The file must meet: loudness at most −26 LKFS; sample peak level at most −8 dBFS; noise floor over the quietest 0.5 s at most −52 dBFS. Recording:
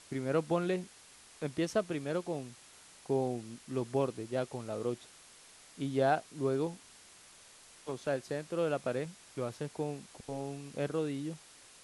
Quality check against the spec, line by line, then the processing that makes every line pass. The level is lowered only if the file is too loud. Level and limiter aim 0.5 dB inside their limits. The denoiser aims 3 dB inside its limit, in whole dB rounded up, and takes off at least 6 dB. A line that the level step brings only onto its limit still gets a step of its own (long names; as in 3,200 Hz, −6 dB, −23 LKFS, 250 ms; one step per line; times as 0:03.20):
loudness −35.5 LKFS: in spec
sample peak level −16.0 dBFS: in spec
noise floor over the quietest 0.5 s −57 dBFS: in spec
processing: no processing needed